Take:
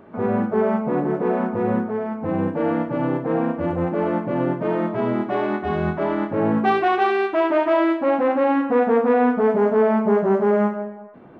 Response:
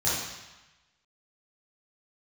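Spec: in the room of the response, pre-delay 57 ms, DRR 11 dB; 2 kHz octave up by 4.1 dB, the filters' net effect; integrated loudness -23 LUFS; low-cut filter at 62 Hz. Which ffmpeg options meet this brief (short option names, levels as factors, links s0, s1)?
-filter_complex "[0:a]highpass=62,equalizer=f=2000:t=o:g=5.5,asplit=2[s0][s1];[1:a]atrim=start_sample=2205,adelay=57[s2];[s1][s2]afir=irnorm=-1:irlink=0,volume=0.075[s3];[s0][s3]amix=inputs=2:normalize=0,volume=0.708"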